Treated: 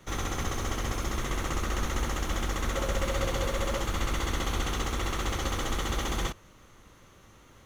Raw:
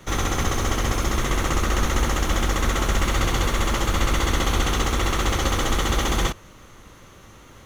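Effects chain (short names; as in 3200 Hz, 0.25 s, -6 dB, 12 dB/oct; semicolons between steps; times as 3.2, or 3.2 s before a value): 2.72–3.82 bell 540 Hz +12.5 dB 0.23 oct; gain -8.5 dB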